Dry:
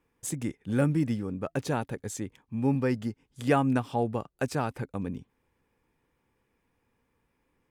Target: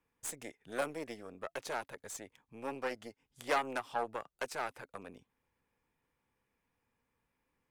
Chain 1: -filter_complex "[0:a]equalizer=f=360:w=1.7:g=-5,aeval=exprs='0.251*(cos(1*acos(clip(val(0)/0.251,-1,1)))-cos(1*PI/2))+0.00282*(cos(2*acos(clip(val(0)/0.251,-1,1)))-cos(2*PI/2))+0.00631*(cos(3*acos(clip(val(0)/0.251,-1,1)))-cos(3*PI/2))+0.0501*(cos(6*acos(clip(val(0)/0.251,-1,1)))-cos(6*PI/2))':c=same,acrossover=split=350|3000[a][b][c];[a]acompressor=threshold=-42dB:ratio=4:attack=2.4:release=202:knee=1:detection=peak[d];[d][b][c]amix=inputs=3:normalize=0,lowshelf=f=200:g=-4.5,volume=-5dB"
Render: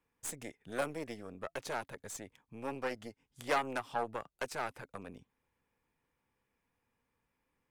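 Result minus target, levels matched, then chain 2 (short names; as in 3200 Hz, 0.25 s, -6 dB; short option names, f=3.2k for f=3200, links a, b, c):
compressor: peak gain reduction -7 dB
-filter_complex "[0:a]equalizer=f=360:w=1.7:g=-5,aeval=exprs='0.251*(cos(1*acos(clip(val(0)/0.251,-1,1)))-cos(1*PI/2))+0.00282*(cos(2*acos(clip(val(0)/0.251,-1,1)))-cos(2*PI/2))+0.00631*(cos(3*acos(clip(val(0)/0.251,-1,1)))-cos(3*PI/2))+0.0501*(cos(6*acos(clip(val(0)/0.251,-1,1)))-cos(6*PI/2))':c=same,acrossover=split=350|3000[a][b][c];[a]acompressor=threshold=-51dB:ratio=4:attack=2.4:release=202:knee=1:detection=peak[d];[d][b][c]amix=inputs=3:normalize=0,lowshelf=f=200:g=-4.5,volume=-5dB"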